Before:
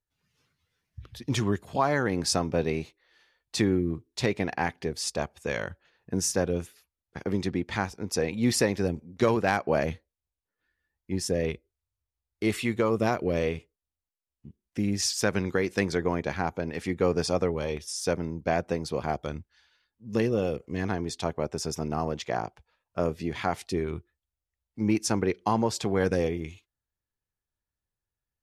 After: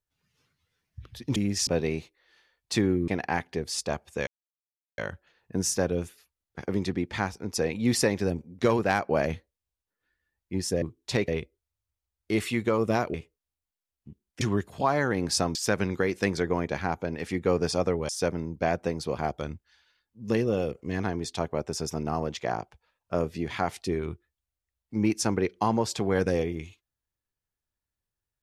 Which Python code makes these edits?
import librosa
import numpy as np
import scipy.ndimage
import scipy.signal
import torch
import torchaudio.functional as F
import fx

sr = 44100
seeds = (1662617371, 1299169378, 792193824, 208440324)

y = fx.edit(x, sr, fx.swap(start_s=1.36, length_s=1.14, other_s=14.79, other_length_s=0.31),
    fx.move(start_s=3.91, length_s=0.46, to_s=11.4),
    fx.insert_silence(at_s=5.56, length_s=0.71),
    fx.cut(start_s=13.26, length_s=0.26),
    fx.cut(start_s=17.64, length_s=0.3), tone=tone)